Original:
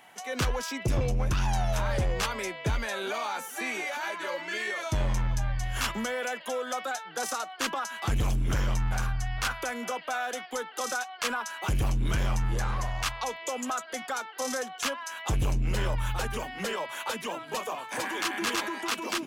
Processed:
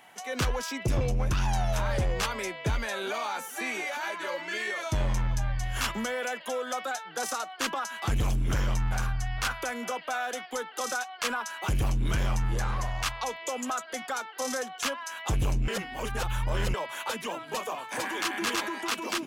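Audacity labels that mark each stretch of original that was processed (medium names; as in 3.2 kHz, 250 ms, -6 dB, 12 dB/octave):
15.680000	16.740000	reverse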